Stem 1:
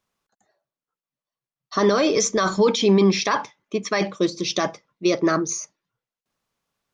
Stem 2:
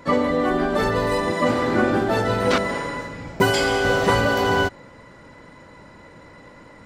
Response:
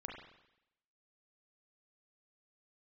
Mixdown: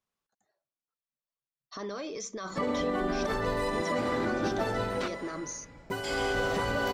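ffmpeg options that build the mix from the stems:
-filter_complex "[0:a]alimiter=limit=-19dB:level=0:latency=1:release=74,volume=-10.5dB[link_01];[1:a]adelay=2500,volume=6.5dB,afade=type=out:start_time=4.63:duration=0.47:silence=0.281838,afade=type=in:start_time=6.03:duration=0.3:silence=0.251189[link_02];[link_01][link_02]amix=inputs=2:normalize=0,asubboost=boost=2.5:cutoff=52,alimiter=limit=-20.5dB:level=0:latency=1:release=104"

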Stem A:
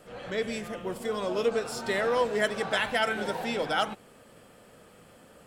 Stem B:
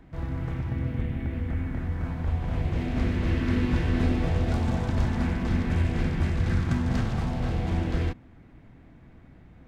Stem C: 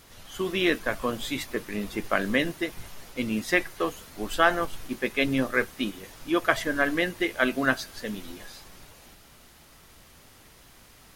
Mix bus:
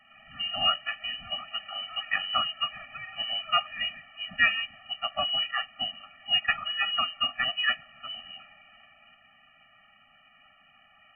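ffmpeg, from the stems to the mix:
ffmpeg -i stem1.wav -i stem2.wav -i stem3.wav -filter_complex "[0:a]volume=-10dB,asplit=2[link_01][link_02];[link_02]volume=-9dB[link_03];[2:a]volume=2.5dB[link_04];[link_03]aecho=0:1:177:1[link_05];[link_01][link_04][link_05]amix=inputs=3:normalize=0,highpass=310,lowpass=frequency=2700:width_type=q:width=0.5098,lowpass=frequency=2700:width_type=q:width=0.6013,lowpass=frequency=2700:width_type=q:width=0.9,lowpass=frequency=2700:width_type=q:width=2.563,afreqshift=-3200,afftfilt=real='re*eq(mod(floor(b*sr/1024/280),2),0)':imag='im*eq(mod(floor(b*sr/1024/280),2),0)':win_size=1024:overlap=0.75" out.wav

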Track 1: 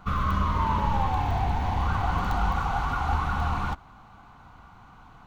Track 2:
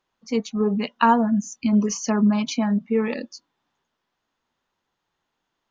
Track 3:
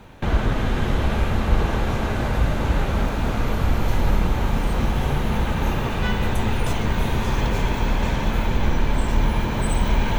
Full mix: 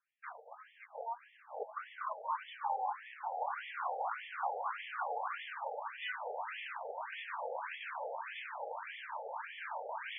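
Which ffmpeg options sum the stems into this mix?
ffmpeg -i stem1.wav -i stem2.wav -i stem3.wav -filter_complex "[0:a]highshelf=frequency=2400:gain=-8.5,adelay=1700,volume=-5dB[link_01];[1:a]lowshelf=frequency=390:gain=-6.5,acompressor=threshold=-22dB:ratio=16,volume=-0.5dB,asplit=2[link_02][link_03];[2:a]volume=-1dB[link_04];[link_03]apad=whole_len=449350[link_05];[link_04][link_05]sidechaincompress=threshold=-40dB:ratio=3:attack=6.4:release=136[link_06];[link_02][link_06]amix=inputs=2:normalize=0,agate=range=-33dB:threshold=-16dB:ratio=3:detection=peak,acompressor=threshold=-23dB:ratio=5,volume=0dB[link_07];[link_01][link_07]amix=inputs=2:normalize=0,afftfilt=real='re*between(b*sr/1024,600*pow(2500/600,0.5+0.5*sin(2*PI*1.7*pts/sr))/1.41,600*pow(2500/600,0.5+0.5*sin(2*PI*1.7*pts/sr))*1.41)':imag='im*between(b*sr/1024,600*pow(2500/600,0.5+0.5*sin(2*PI*1.7*pts/sr))/1.41,600*pow(2500/600,0.5+0.5*sin(2*PI*1.7*pts/sr))*1.41)':win_size=1024:overlap=0.75" out.wav

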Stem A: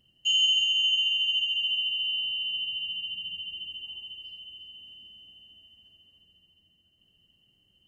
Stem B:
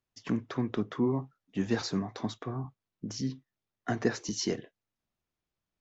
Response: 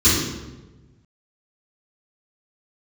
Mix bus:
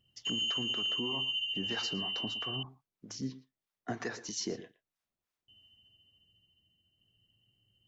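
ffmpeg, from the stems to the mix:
-filter_complex "[0:a]equalizer=frequency=110:width_type=o:width=0.3:gain=15,volume=-7.5dB,asplit=3[link_01][link_02][link_03];[link_01]atrim=end=2.63,asetpts=PTS-STARTPTS,afade=type=out:start_time=2.626:duration=0.004:curve=hsin[link_04];[link_02]atrim=start=2.63:end=5.48,asetpts=PTS-STARTPTS,volume=0[link_05];[link_03]atrim=start=5.48,asetpts=PTS-STARTPTS,afade=type=in:duration=0.004:curve=hsin[link_06];[link_04][link_05][link_06]concat=n=3:v=0:a=1[link_07];[1:a]lowshelf=frequency=330:gain=-8,acrossover=split=670[link_08][link_09];[link_08]aeval=exprs='val(0)*(1-0.7/2+0.7/2*cos(2*PI*3.1*n/s))':channel_layout=same[link_10];[link_09]aeval=exprs='val(0)*(1-0.7/2-0.7/2*cos(2*PI*3.1*n/s))':channel_layout=same[link_11];[link_10][link_11]amix=inputs=2:normalize=0,volume=1.5dB,asplit=2[link_12][link_13];[link_13]volume=-17.5dB,aecho=0:1:115:1[link_14];[link_07][link_12][link_14]amix=inputs=3:normalize=0,alimiter=level_in=1.5dB:limit=-24dB:level=0:latency=1:release=77,volume=-1.5dB"

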